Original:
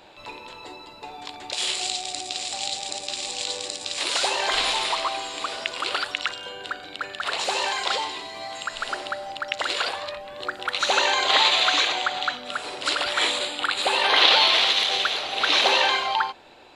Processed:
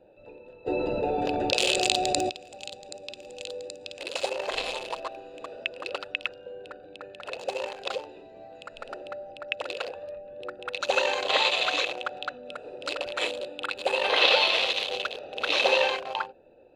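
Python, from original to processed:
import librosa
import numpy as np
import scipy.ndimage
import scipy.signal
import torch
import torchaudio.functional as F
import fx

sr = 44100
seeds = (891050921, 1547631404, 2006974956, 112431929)

y = fx.wiener(x, sr, points=41)
y = fx.small_body(y, sr, hz=(520.0, 2600.0), ring_ms=25, db=12)
y = fx.env_flatten(y, sr, amount_pct=70, at=(0.66, 2.29), fade=0.02)
y = F.gain(torch.from_numpy(y), -5.5).numpy()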